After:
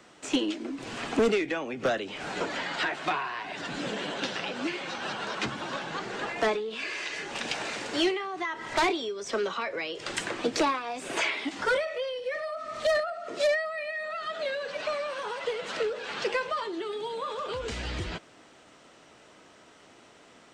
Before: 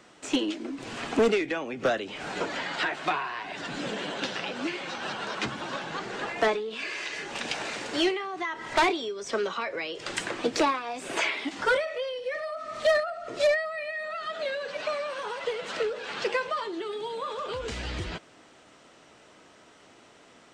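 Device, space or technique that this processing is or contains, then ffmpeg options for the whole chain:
one-band saturation: -filter_complex "[0:a]asettb=1/sr,asplit=3[s0][s1][s2];[s0]atrim=end=12.994[s3];[s1]atrim=start=12.99:end=14.12,asetpts=PTS-STARTPTS,afade=t=in:d=0.004:c=qsin,afade=t=out:st=1.126:d=0.004:c=qsin,highpass=f=160:w=0.5412,highpass=f=160:w=1.3066[s4];[s2]atrim=start=14.116[s5];[s3][s4]acrossfade=d=0.004:c1=hsin:c2=qsin[s6];[s6][s5]acrossfade=d=0.004:c1=qsin:c2=hsin,acrossover=split=310|3100[s7][s8][s9];[s8]asoftclip=type=tanh:threshold=0.106[s10];[s7][s10][s9]amix=inputs=3:normalize=0"

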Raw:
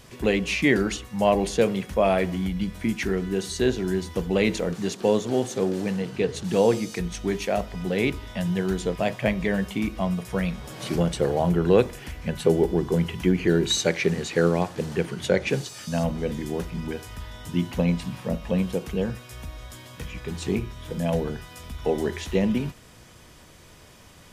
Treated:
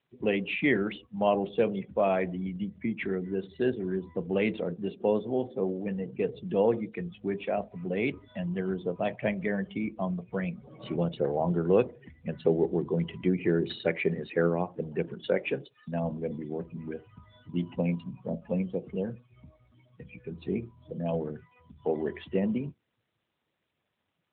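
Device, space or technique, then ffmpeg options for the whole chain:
mobile call with aggressive noise cancelling: -filter_complex "[0:a]asplit=3[s0][s1][s2];[s0]afade=t=out:st=15.13:d=0.02[s3];[s1]highpass=190,afade=t=in:st=15.13:d=0.02,afade=t=out:st=15.65:d=0.02[s4];[s2]afade=t=in:st=15.65:d=0.02[s5];[s3][s4][s5]amix=inputs=3:normalize=0,highpass=f=140:p=1,afftdn=nr=25:nf=-35,volume=0.631" -ar 8000 -c:a libopencore_amrnb -b:a 12200

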